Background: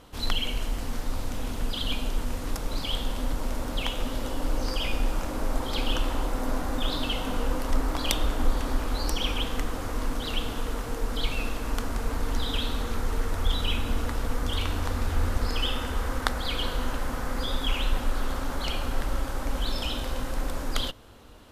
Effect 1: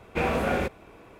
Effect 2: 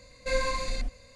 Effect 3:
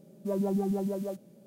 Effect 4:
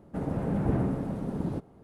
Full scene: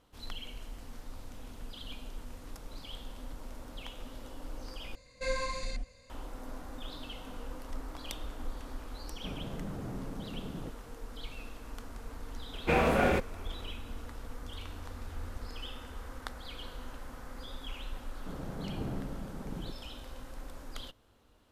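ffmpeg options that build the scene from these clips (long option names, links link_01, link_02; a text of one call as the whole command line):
ffmpeg -i bed.wav -i cue0.wav -i cue1.wav -i cue2.wav -i cue3.wav -filter_complex "[4:a]asplit=2[link_01][link_02];[0:a]volume=-15dB[link_03];[link_01]alimiter=limit=-24dB:level=0:latency=1:release=71[link_04];[link_03]asplit=2[link_05][link_06];[link_05]atrim=end=4.954[link_07];[2:a]atrim=end=1.15,asetpts=PTS-STARTPTS,volume=-5.5dB[link_08];[link_06]atrim=start=6.096[link_09];[link_04]atrim=end=1.83,asetpts=PTS-STARTPTS,volume=-9dB,afade=type=in:duration=0.004:curve=hsin,afade=type=out:start_time=1.826:duration=0.004:curve=hsin,adelay=9100[link_10];[1:a]atrim=end=1.19,asetpts=PTS-STARTPTS,volume=-0.5dB,afade=type=in:duration=0.004:curve=hsin,afade=type=out:start_time=1.186:duration=0.004:curve=hsin,adelay=552132S[link_11];[link_02]atrim=end=1.83,asetpts=PTS-STARTPTS,volume=-11dB,afade=type=in:duration=0.004:curve=hsin,afade=type=out:start_time=1.826:duration=0.004:curve=hsin,adelay=799092S[link_12];[link_07][link_08]acrossfade=duration=0.004:curve1=hsin:curve2=hsin[link_13];[link_13][link_09]acrossfade=duration=0.004:curve1=hsin:curve2=hsin[link_14];[link_14][link_10][link_11][link_12]amix=inputs=4:normalize=0" out.wav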